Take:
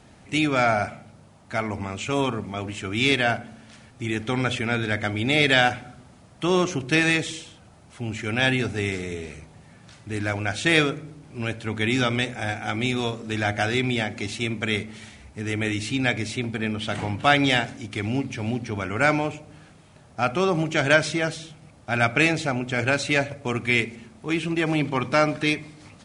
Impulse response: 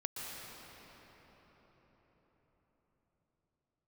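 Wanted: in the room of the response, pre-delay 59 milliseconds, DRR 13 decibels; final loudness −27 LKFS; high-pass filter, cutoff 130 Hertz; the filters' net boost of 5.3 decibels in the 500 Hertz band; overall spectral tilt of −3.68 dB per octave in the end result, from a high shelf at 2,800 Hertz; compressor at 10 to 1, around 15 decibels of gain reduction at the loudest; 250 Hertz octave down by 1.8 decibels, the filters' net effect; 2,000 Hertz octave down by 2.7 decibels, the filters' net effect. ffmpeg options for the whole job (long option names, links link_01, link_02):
-filter_complex "[0:a]highpass=130,equalizer=frequency=250:width_type=o:gain=-5.5,equalizer=frequency=500:width_type=o:gain=8.5,equalizer=frequency=2000:width_type=o:gain=-7.5,highshelf=frequency=2800:gain=8,acompressor=threshold=-26dB:ratio=10,asplit=2[link_01][link_02];[1:a]atrim=start_sample=2205,adelay=59[link_03];[link_02][link_03]afir=irnorm=-1:irlink=0,volume=-14.5dB[link_04];[link_01][link_04]amix=inputs=2:normalize=0,volume=4.5dB"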